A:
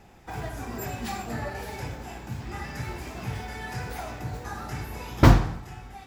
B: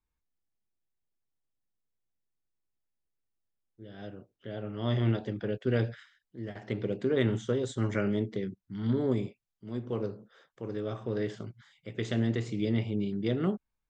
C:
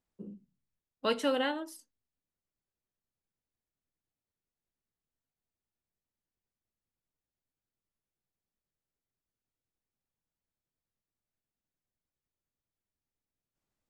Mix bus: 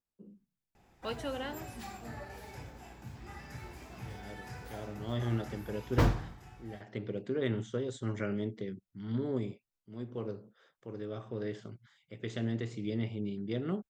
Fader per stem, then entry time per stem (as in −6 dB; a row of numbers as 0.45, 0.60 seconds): −11.5, −5.5, −8.5 decibels; 0.75, 0.25, 0.00 seconds